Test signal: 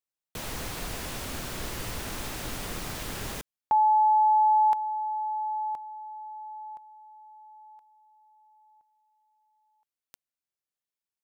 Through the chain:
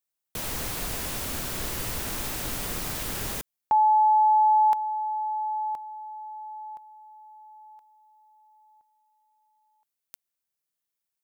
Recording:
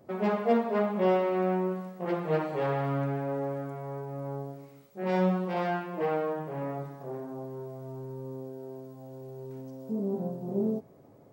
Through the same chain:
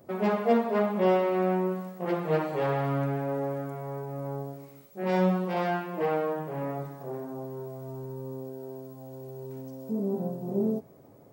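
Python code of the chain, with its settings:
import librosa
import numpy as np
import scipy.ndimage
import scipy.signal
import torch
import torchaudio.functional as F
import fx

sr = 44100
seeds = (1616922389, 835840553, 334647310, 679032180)

y = fx.high_shelf(x, sr, hz=8800.0, db=8.5)
y = F.gain(torch.from_numpy(y), 1.5).numpy()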